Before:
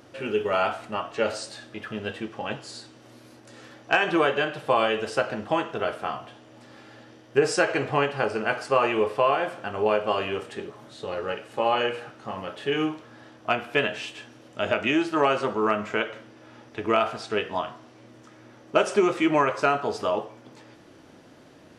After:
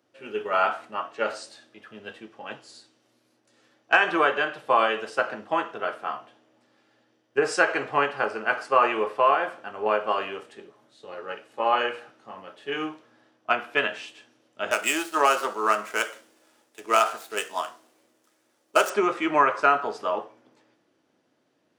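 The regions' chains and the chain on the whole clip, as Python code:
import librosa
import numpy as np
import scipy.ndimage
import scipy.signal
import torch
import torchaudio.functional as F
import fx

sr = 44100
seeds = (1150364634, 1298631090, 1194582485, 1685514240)

y = fx.chain(x, sr, fx.median_filter(points=9),
    fx.bass_treble(bass_db=-9, treble_db=15), at=(14.71, 18.9))
y = scipy.signal.sosfilt(scipy.signal.butter(2, 210.0, 'highpass', fs=sr, output='sos'), y)
y = fx.dynamic_eq(y, sr, hz=1300.0, q=0.89, threshold_db=-37.0, ratio=4.0, max_db=8)
y = fx.band_widen(y, sr, depth_pct=40)
y = y * 10.0 ** (-4.5 / 20.0)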